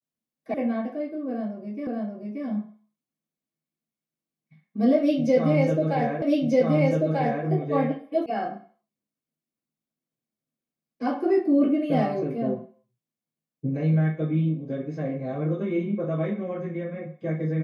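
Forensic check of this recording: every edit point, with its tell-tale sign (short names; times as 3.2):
0.54 sound cut off
1.87 repeat of the last 0.58 s
6.22 repeat of the last 1.24 s
8.26 sound cut off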